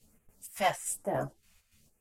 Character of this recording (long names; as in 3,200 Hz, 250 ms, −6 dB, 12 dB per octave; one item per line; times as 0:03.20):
phaser sweep stages 2, 1.1 Hz, lowest notch 280–4,500 Hz
chopped level 3.5 Hz, depth 60%, duty 60%
a shimmering, thickened sound